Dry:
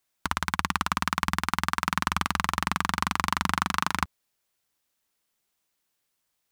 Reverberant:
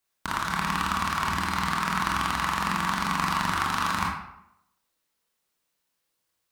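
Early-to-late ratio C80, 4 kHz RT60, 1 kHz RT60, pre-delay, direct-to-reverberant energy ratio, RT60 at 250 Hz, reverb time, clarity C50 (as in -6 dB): 5.5 dB, 0.50 s, 0.80 s, 21 ms, -3.5 dB, 0.75 s, 0.80 s, 2.0 dB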